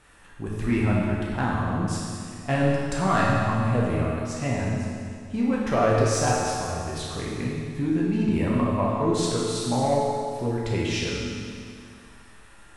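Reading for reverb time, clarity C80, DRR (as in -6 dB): 2.2 s, 0.0 dB, -5.0 dB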